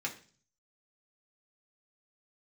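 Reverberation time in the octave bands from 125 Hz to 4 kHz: 0.80, 0.55, 0.45, 0.40, 0.40, 0.50 seconds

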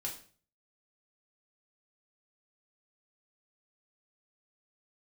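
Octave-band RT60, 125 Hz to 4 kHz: 0.65, 0.50, 0.45, 0.40, 0.40, 0.40 seconds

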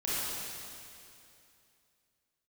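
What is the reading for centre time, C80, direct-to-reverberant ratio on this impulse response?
194 ms, −3.0 dB, −10.0 dB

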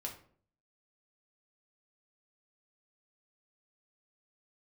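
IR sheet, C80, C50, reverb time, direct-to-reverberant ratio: 13.5 dB, 9.5 dB, 0.50 s, 0.0 dB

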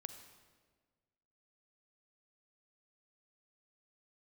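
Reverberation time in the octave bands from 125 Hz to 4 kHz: 1.8, 1.7, 1.7, 1.4, 1.3, 1.1 seconds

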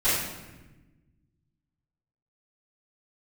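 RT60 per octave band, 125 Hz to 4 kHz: 2.2, 1.8, 1.2, 1.0, 1.1, 0.85 seconds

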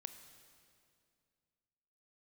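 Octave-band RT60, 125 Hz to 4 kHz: 2.7, 2.7, 2.4, 2.2, 2.1, 2.0 seconds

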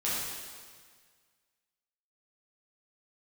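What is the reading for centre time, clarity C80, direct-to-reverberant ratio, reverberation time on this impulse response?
114 ms, 0.5 dB, −9.0 dB, 1.7 s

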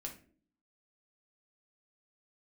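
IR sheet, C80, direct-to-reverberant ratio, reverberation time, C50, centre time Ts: 16.0 dB, 0.0 dB, non-exponential decay, 10.0 dB, 15 ms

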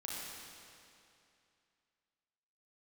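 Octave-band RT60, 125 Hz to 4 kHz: 2.6, 2.6, 2.6, 2.6, 2.5, 2.4 seconds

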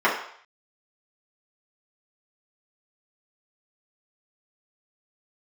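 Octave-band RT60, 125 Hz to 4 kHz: 0.40, 0.45, 0.60, 0.60, 0.65, 0.60 seconds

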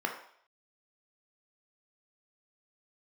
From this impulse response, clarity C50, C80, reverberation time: 7.0 dB, 10.5 dB, 0.60 s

